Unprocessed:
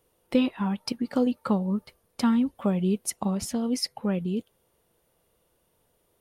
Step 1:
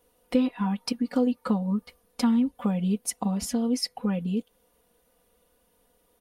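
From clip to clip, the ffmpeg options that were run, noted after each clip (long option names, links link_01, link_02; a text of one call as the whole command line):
ffmpeg -i in.wav -af "aecho=1:1:4.1:0.95,acompressor=threshold=-29dB:ratio=1.5" out.wav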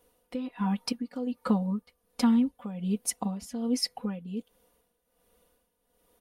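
ffmpeg -i in.wav -af "tremolo=f=1.3:d=0.75" out.wav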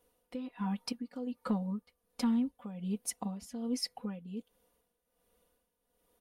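ffmpeg -i in.wav -af "asoftclip=type=tanh:threshold=-14dB,volume=-6dB" out.wav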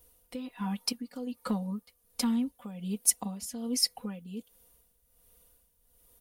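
ffmpeg -i in.wav -filter_complex "[0:a]acrossover=split=110[link_01][link_02];[link_01]acompressor=mode=upward:threshold=-57dB:ratio=2.5[link_03];[link_03][link_02]amix=inputs=2:normalize=0,crystalizer=i=3:c=0,volume=1dB" out.wav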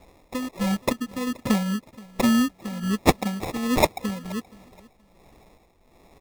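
ffmpeg -i in.wav -af "acrusher=samples=29:mix=1:aa=0.000001,aecho=1:1:475|950:0.075|0.0195,volume=9dB" out.wav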